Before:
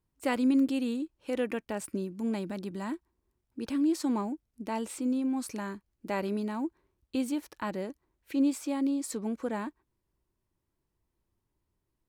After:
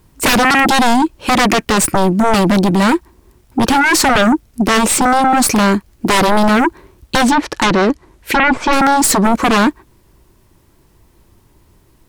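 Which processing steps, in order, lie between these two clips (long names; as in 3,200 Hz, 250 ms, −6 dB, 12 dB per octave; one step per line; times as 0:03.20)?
stylus tracing distortion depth 0.023 ms
0:07.22–0:08.73: treble cut that deepens with the level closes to 1,300 Hz, closed at −25 dBFS
sine wavefolder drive 17 dB, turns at −17 dBFS
level +9 dB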